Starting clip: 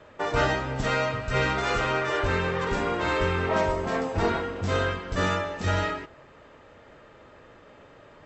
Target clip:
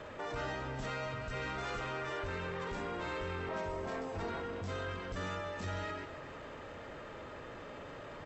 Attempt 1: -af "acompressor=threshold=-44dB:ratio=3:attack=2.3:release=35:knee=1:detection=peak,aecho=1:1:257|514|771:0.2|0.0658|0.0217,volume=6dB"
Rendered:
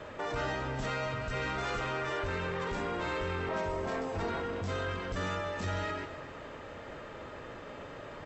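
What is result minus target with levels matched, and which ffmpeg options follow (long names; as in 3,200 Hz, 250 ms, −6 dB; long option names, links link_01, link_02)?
downward compressor: peak gain reduction −4.5 dB
-af "acompressor=threshold=-51dB:ratio=3:attack=2.3:release=35:knee=1:detection=peak,aecho=1:1:257|514|771:0.2|0.0658|0.0217,volume=6dB"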